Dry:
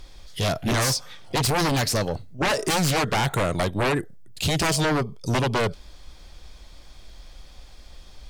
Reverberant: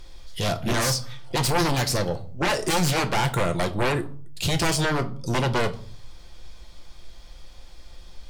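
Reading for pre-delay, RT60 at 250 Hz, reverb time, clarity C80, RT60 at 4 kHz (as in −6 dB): 6 ms, 0.70 s, 0.50 s, 21.5 dB, 0.35 s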